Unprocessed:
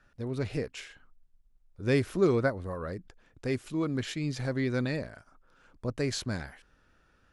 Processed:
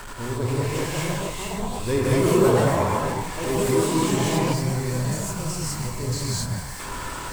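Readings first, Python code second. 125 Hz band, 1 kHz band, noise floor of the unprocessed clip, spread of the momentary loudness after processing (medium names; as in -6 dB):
+10.0 dB, +16.5 dB, -66 dBFS, 11 LU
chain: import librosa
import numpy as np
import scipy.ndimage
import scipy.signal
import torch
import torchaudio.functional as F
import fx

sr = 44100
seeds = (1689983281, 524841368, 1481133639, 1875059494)

p1 = x + 0.5 * 10.0 ** (-29.5 / 20.0) * np.sign(x)
p2 = fx.sample_hold(p1, sr, seeds[0], rate_hz=3900.0, jitter_pct=0)
p3 = p1 + (p2 * librosa.db_to_amplitude(-10.5))
p4 = fx.rev_gated(p3, sr, seeds[1], gate_ms=260, shape='rising', drr_db=-5.5)
p5 = fx.echo_pitch(p4, sr, ms=631, semitones=4, count=2, db_per_echo=-3.0)
p6 = fx.graphic_eq_31(p5, sr, hz=(400, 1000, 8000), db=(4, 12, 10))
p7 = fx.spec_box(p6, sr, start_s=4.53, length_s=2.27, low_hz=220.0, high_hz=4000.0, gain_db=-7)
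y = p7 * librosa.db_to_amplitude(-6.0)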